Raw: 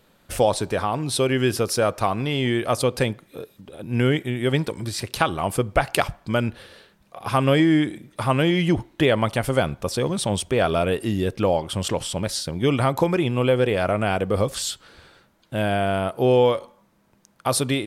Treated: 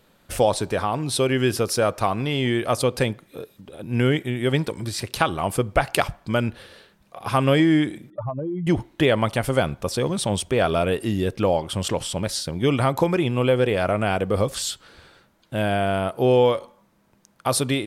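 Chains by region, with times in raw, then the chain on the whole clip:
0:08.10–0:08.67: expanding power law on the bin magnitudes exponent 3.1 + parametric band 680 Hz +12 dB 2.8 octaves + downward compressor 10 to 1, threshold −25 dBFS
whole clip: no processing

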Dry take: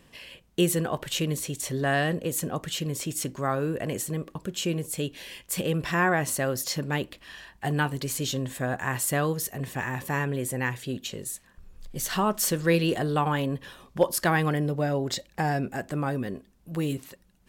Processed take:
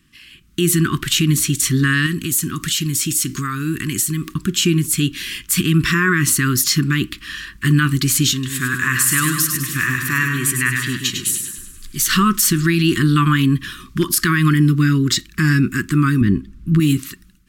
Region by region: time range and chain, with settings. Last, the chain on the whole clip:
0:02.06–0:04.34: high-shelf EQ 2,700 Hz +8.5 dB + downward compressor 3 to 1, threshold −33 dBFS
0:08.33–0:12.08: low-shelf EQ 490 Hz −9 dB + echo with a time of its own for lows and highs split 1,400 Hz, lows 135 ms, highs 101 ms, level −6 dB
0:16.21–0:16.80: low-pass filter 3,000 Hz 6 dB per octave + low-shelf EQ 260 Hz +10.5 dB
whole clip: elliptic band-stop filter 340–1,200 Hz, stop band 40 dB; brickwall limiter −21 dBFS; automatic gain control gain up to 15.5 dB

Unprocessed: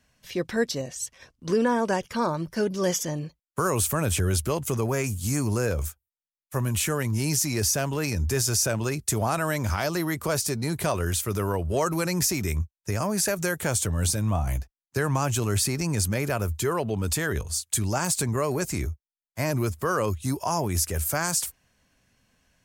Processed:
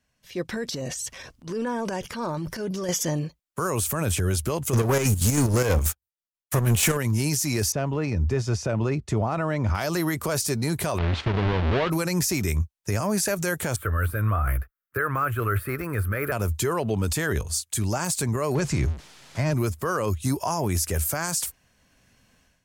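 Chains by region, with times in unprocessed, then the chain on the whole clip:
0:00.54–0:02.89: downward compressor 5 to 1, threshold −31 dBFS + transient designer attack −11 dB, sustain +7 dB
0:04.73–0:06.97: leveller curve on the samples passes 3 + square-wave tremolo 6.2 Hz, depth 60%, duty 55%
0:07.72–0:09.75: head-to-tape spacing loss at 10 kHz 28 dB + notch filter 1,600 Hz
0:10.98–0:11.90: each half-wave held at its own peak + low-pass filter 3,700 Hz 24 dB per octave + downward compressor 5 to 1, threshold −24 dBFS
0:13.76–0:16.32: de-essing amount 70% + drawn EQ curve 110 Hz 0 dB, 160 Hz −11 dB, 280 Hz −5 dB, 470 Hz +2 dB, 890 Hz −8 dB, 1,300 Hz +14 dB, 6,400 Hz −24 dB, 12,000 Hz +6 dB
0:18.55–0:19.54: converter with a step at zero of −35 dBFS + low-pass filter 5,900 Hz + parametric band 140 Hz +9 dB 0.43 octaves
whole clip: automatic gain control gain up to 13.5 dB; brickwall limiter −8 dBFS; level −7.5 dB

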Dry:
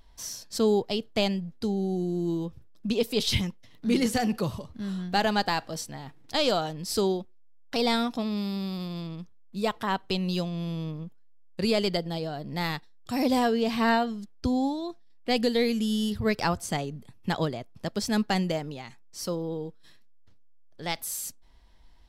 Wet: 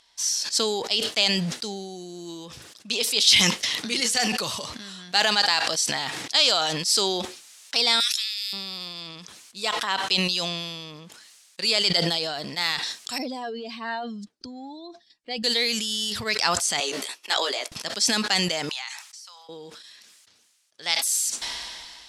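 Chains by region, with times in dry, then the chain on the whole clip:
0:08.00–0:08.53: Butterworth high-pass 1,600 Hz 48 dB per octave + high-shelf EQ 6,500 Hz +11 dB
0:13.18–0:15.44: expanding power law on the bin magnitudes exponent 1.6 + downward compressor 2 to 1, threshold −28 dBFS
0:16.80–0:17.72: downward expander −38 dBFS + high-pass filter 350 Hz 24 dB per octave + double-tracking delay 15 ms −3 dB
0:18.69–0:19.49: Chebyshev high-pass filter 790 Hz, order 4 + downward compressor 20 to 1, threshold −52 dBFS
whole clip: meter weighting curve ITU-R 468; level that may fall only so fast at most 28 dB per second

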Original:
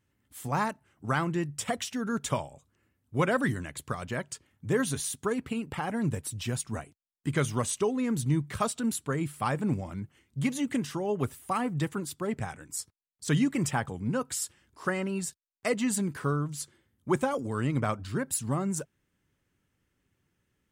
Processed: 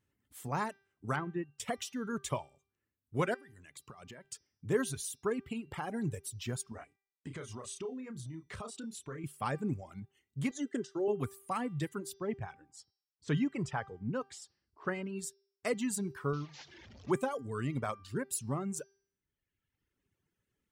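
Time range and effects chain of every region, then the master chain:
0:01.16–0:01.60: low-pass filter 2,100 Hz + expander for the loud parts, over −45 dBFS
0:03.34–0:04.25: high-pass filter 90 Hz + downward compressor 16 to 1, threshold −39 dBFS
0:06.72–0:09.24: low-pass filter 8,000 Hz + double-tracking delay 31 ms −5.5 dB + downward compressor 10 to 1, threshold −33 dBFS
0:10.51–0:11.08: downward expander −34 dBFS + loudspeaker in its box 230–8,000 Hz, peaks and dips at 390 Hz +9 dB, 970 Hz −9 dB, 1,600 Hz +7 dB, 2,400 Hz −10 dB, 6,800 Hz +4 dB
0:12.14–0:15.19: high-frequency loss of the air 110 metres + one half of a high-frequency compander decoder only
0:16.33–0:17.11: linear delta modulator 32 kbit/s, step −39 dBFS + high-pass filter 47 Hz
whole clip: parametric band 410 Hz +4.5 dB 0.26 octaves; reverb reduction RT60 1.2 s; hum removal 393.7 Hz, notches 15; level −5.5 dB

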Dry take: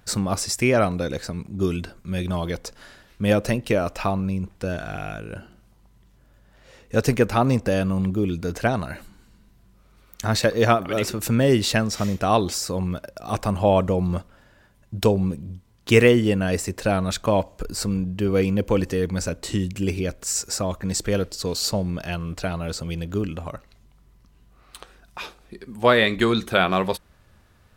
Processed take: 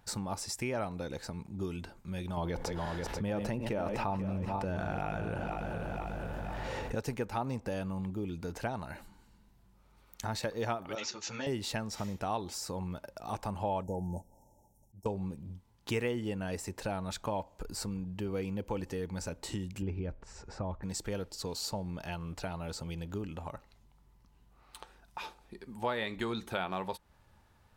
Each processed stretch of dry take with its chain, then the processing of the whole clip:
0:02.37–0:06.95: feedback delay that plays each chunk backwards 244 ms, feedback 62%, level −11 dB + high-shelf EQ 3,100 Hz −9.5 dB + envelope flattener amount 70%
0:10.95–0:11.47: Butterworth low-pass 6,800 Hz 96 dB per octave + spectral tilt +4 dB per octave + string-ensemble chorus
0:13.83–0:15.06: high-shelf EQ 6,300 Hz +9.5 dB + volume swells 242 ms + linear-phase brick-wall band-stop 940–5,300 Hz
0:19.82–0:20.83: Bessel low-pass filter 1,700 Hz + low-shelf EQ 110 Hz +11 dB
whole clip: parametric band 870 Hz +11.5 dB 0.24 octaves; downward compressor 2 to 1, threshold −29 dBFS; level −8.5 dB

